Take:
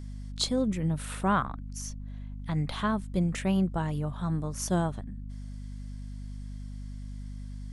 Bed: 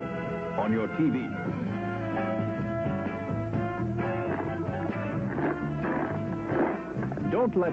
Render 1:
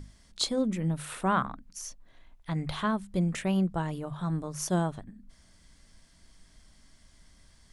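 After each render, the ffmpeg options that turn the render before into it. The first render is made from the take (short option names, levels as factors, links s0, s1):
-af "bandreject=f=50:t=h:w=6,bandreject=f=100:t=h:w=6,bandreject=f=150:t=h:w=6,bandreject=f=200:t=h:w=6,bandreject=f=250:t=h:w=6"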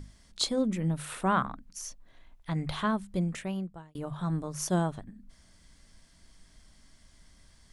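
-filter_complex "[0:a]asplit=2[s0][s1];[s0]atrim=end=3.95,asetpts=PTS-STARTPTS,afade=t=out:st=3.01:d=0.94[s2];[s1]atrim=start=3.95,asetpts=PTS-STARTPTS,afade=t=in:d=0.004:c=hsin[s3];[s2][s3]concat=n=2:v=0:a=1"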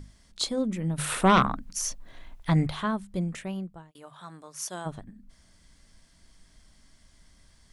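-filter_complex "[0:a]asettb=1/sr,asplit=3[s0][s1][s2];[s0]atrim=end=0.984[s3];[s1]atrim=start=0.98:end=2.67,asetpts=PTS-STARTPTS,afade=t=in:d=0.004:c=qsin,afade=t=out:st=1.686:d=0.004:c=qsin,aeval=exprs='0.211*sin(PI/2*2*val(0)/0.211)':c=same[s4];[s2]atrim=start=2.666[s5];[s3][s4]acrossfade=d=0.004:c1=hsin:c2=qsin[s6];[s6][s5]acrossfade=d=0.004:c1=qsin:c2=hsin,asplit=3[s7][s8][s9];[s7]afade=t=out:st=3.9:d=0.02[s10];[s8]highpass=f=1400:p=1,afade=t=in:st=3.9:d=0.02,afade=t=out:st=4.85:d=0.02[s11];[s9]afade=t=in:st=4.85:d=0.02[s12];[s10][s11][s12]amix=inputs=3:normalize=0"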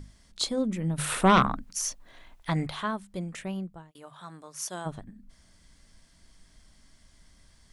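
-filter_complex "[0:a]asettb=1/sr,asplit=3[s0][s1][s2];[s0]atrim=end=1.644[s3];[s1]atrim=start=1.64:end=3.39,asetpts=PTS-STARTPTS,afade=t=in:d=0.004:c=qsin,afade=t=out:st=1.746:d=0.004:c=qsin,lowshelf=f=270:g=-8.5[s4];[s2]atrim=start=3.386[s5];[s3][s4]acrossfade=d=0.004:c1=hsin:c2=qsin[s6];[s6][s5]acrossfade=d=0.004:c1=qsin:c2=hsin"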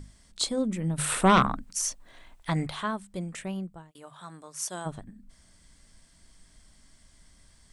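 -af "equalizer=f=8200:w=4.2:g=7"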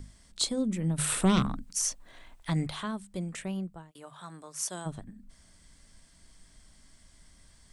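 -filter_complex "[0:a]acrossover=split=370|3000[s0][s1][s2];[s1]acompressor=threshold=0.00794:ratio=2[s3];[s0][s3][s2]amix=inputs=3:normalize=0"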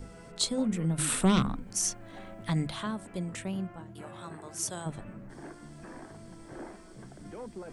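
-filter_complex "[1:a]volume=0.133[s0];[0:a][s0]amix=inputs=2:normalize=0"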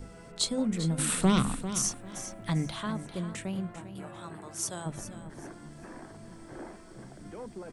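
-af "aecho=1:1:397|794|1191:0.266|0.0665|0.0166"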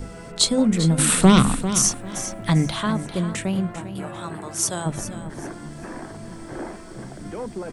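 -af "volume=3.35"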